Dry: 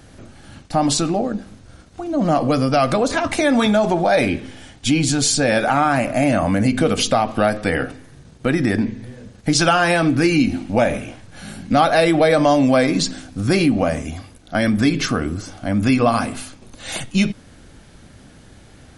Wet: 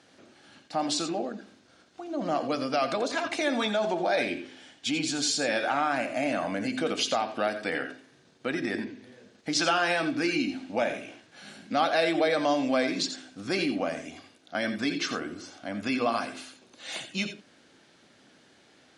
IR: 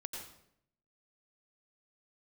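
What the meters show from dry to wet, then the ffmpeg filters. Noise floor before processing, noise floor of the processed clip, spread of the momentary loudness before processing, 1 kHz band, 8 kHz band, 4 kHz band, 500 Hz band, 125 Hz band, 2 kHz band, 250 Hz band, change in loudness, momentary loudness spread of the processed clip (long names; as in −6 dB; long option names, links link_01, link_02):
−46 dBFS, −60 dBFS, 14 LU, −10.0 dB, −10.5 dB, −6.5 dB, −10.0 dB, −21.0 dB, −8.0 dB, −13.0 dB, −10.5 dB, 14 LU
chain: -filter_complex "[0:a]highpass=270,lowpass=4600,highshelf=frequency=3300:gain=9.5[link_01];[1:a]atrim=start_sample=2205,atrim=end_sample=3969[link_02];[link_01][link_02]afir=irnorm=-1:irlink=0,volume=-6.5dB"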